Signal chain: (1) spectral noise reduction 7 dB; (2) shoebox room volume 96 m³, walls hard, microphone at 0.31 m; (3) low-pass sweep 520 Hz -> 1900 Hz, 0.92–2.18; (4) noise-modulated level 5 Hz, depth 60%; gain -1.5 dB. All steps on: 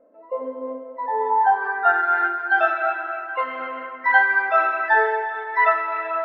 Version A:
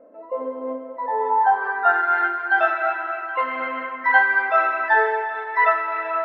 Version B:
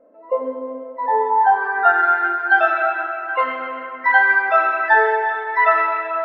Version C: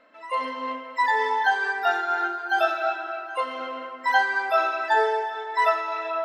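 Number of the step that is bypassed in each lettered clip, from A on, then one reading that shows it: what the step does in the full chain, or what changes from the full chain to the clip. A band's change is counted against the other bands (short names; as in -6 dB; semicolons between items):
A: 1, 250 Hz band +2.0 dB; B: 4, momentary loudness spread change -2 LU; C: 3, 4 kHz band +11.5 dB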